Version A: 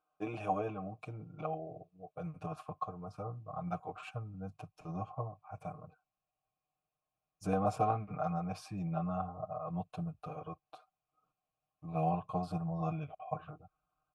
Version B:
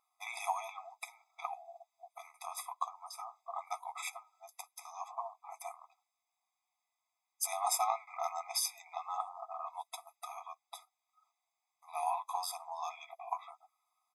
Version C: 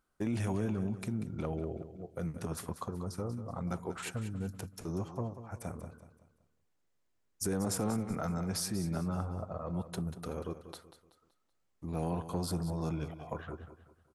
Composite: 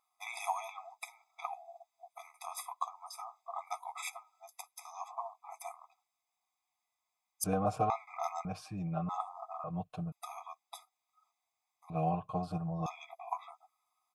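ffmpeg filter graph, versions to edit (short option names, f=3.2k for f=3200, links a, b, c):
-filter_complex "[0:a]asplit=4[a][b][c][d];[1:a]asplit=5[e][f][g][h][i];[e]atrim=end=7.442[j];[a]atrim=start=7.438:end=7.902[k];[f]atrim=start=7.898:end=8.452[l];[b]atrim=start=8.448:end=9.092[m];[g]atrim=start=9.088:end=9.642[n];[c]atrim=start=9.638:end=10.122[o];[h]atrim=start=10.118:end=11.902[p];[d]atrim=start=11.898:end=12.862[q];[i]atrim=start=12.858[r];[j][k]acrossfade=d=0.004:c1=hsin:c2=hsin[s];[s][l]acrossfade=d=0.004:c1=hsin:c2=hsin[t];[t][m]acrossfade=d=0.004:c1=hsin:c2=hsin[u];[u][n]acrossfade=d=0.004:c1=hsin:c2=hsin[v];[v][o]acrossfade=d=0.004:c1=hsin:c2=hsin[w];[w][p]acrossfade=d=0.004:c1=hsin:c2=hsin[x];[x][q]acrossfade=d=0.004:c1=hsin:c2=hsin[y];[y][r]acrossfade=d=0.004:c1=hsin:c2=hsin"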